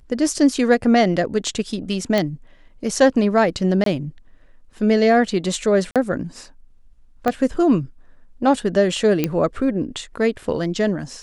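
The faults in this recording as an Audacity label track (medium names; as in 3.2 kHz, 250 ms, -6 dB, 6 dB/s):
2.180000	2.180000	pop -6 dBFS
3.840000	3.860000	dropout 23 ms
5.910000	5.960000	dropout 47 ms
7.280000	7.280000	pop -8 dBFS
9.240000	9.240000	pop -6 dBFS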